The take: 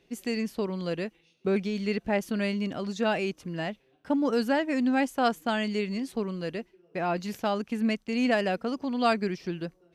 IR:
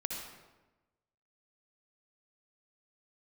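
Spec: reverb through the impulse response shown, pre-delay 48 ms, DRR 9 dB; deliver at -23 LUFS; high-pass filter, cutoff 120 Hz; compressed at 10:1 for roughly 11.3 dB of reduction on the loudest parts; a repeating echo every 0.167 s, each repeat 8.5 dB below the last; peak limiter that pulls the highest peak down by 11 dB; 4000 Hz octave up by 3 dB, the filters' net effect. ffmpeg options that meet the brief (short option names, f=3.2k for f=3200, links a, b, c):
-filter_complex "[0:a]highpass=120,equalizer=f=4k:t=o:g=4,acompressor=threshold=-31dB:ratio=10,alimiter=level_in=7.5dB:limit=-24dB:level=0:latency=1,volume=-7.5dB,aecho=1:1:167|334|501|668:0.376|0.143|0.0543|0.0206,asplit=2[a][b];[1:a]atrim=start_sample=2205,adelay=48[c];[b][c]afir=irnorm=-1:irlink=0,volume=-11dB[d];[a][d]amix=inputs=2:normalize=0,volume=16.5dB"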